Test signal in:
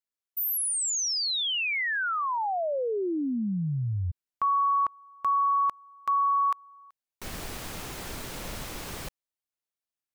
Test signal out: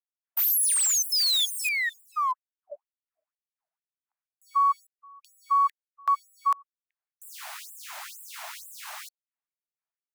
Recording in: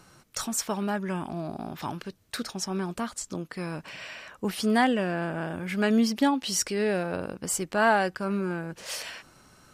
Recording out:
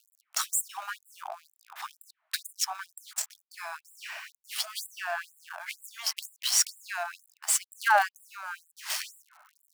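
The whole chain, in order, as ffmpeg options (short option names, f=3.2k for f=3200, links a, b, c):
-filter_complex "[0:a]acrossover=split=240|610|2200[a][b][c][d];[d]acrusher=bits=6:dc=4:mix=0:aa=0.000001[e];[a][b][c][e]amix=inputs=4:normalize=0,afftfilt=real='re*gte(b*sr/1024,590*pow(7400/590,0.5+0.5*sin(2*PI*2.1*pts/sr)))':imag='im*gte(b*sr/1024,590*pow(7400/590,0.5+0.5*sin(2*PI*2.1*pts/sr)))':win_size=1024:overlap=0.75,volume=4dB"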